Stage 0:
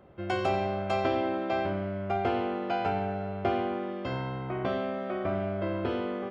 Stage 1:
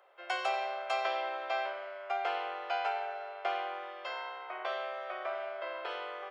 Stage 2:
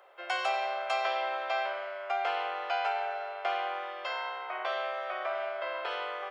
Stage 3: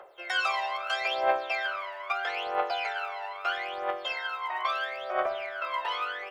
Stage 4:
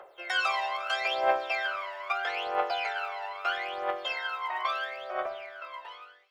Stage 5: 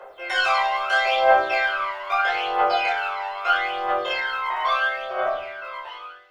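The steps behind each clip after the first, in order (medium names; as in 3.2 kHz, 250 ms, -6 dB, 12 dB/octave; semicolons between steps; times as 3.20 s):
Bessel high-pass 890 Hz, order 8; trim +1 dB
dynamic bell 310 Hz, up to -6 dB, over -54 dBFS, Q 1.3; in parallel at -1 dB: peak limiter -31.5 dBFS, peak gain reduction 10 dB
phaser 0.77 Hz, delay 1.1 ms, feedback 80%
fade out at the end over 1.81 s; feedback echo behind a high-pass 167 ms, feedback 82%, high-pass 4.8 kHz, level -18 dB
simulated room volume 450 m³, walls furnished, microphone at 5 m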